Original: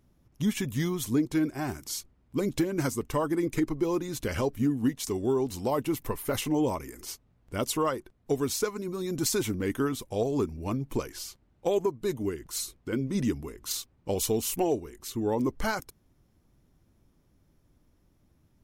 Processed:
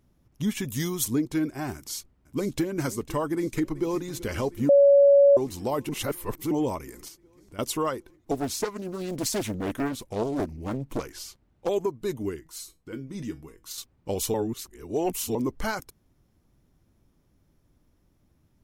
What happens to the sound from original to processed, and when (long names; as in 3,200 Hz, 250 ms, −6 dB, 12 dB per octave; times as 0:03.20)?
0:00.65–0:01.08: bass and treble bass −1 dB, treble +9 dB
0:01.75–0:02.67: delay throw 500 ms, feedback 80%, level −16.5 dB
0:03.33–0:04.06: delay throw 380 ms, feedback 80%, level −17.5 dB
0:04.69–0:05.37: beep over 563 Hz −12.5 dBFS
0:05.89–0:06.51: reverse
0:07.08–0:07.59: downward compressor 2 to 1, threshold −51 dBFS
0:08.31–0:11.69: highs frequency-modulated by the lows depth 0.78 ms
0:12.40–0:13.78: tuned comb filter 160 Hz, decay 0.2 s, mix 70%
0:14.34–0:15.35: reverse